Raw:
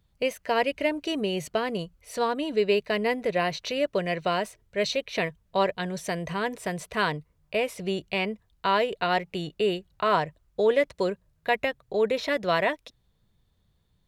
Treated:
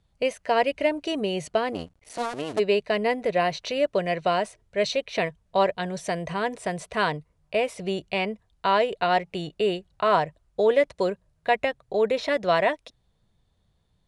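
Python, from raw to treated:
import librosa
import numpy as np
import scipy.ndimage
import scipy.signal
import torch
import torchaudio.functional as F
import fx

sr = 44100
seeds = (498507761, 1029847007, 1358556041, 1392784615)

y = fx.cycle_switch(x, sr, every=2, mode='muted', at=(1.72, 2.58), fade=0.02)
y = scipy.signal.sosfilt(scipy.signal.butter(16, 11000.0, 'lowpass', fs=sr, output='sos'), y)
y = fx.peak_eq(y, sr, hz=700.0, db=4.5, octaves=0.84)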